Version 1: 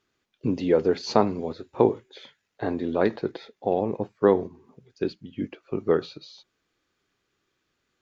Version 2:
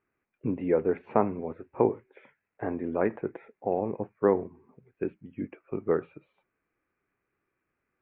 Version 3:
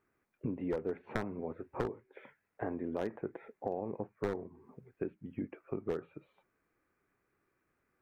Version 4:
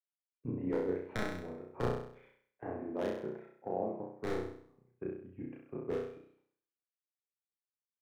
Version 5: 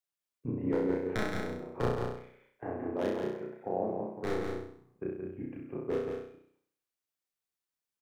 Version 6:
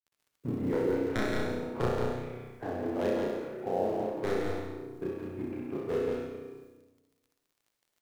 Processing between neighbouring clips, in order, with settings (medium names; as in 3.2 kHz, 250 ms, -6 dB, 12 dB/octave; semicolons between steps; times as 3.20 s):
elliptic low-pass 2.4 kHz, stop band 50 dB; trim -3.5 dB
one-sided wavefolder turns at -18.5 dBFS; peaking EQ 2.5 kHz -4 dB 0.6 oct; compression 3:1, threshold -39 dBFS, peak gain reduction 15 dB; trim +2.5 dB
flutter echo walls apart 5.6 m, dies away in 0.92 s; three bands expanded up and down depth 100%; trim -4.5 dB
delay 174 ms -5 dB; trim +3 dB
companding laws mixed up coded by mu; crackle 33 per s -55 dBFS; on a send at -3 dB: reverberation RT60 1.2 s, pre-delay 53 ms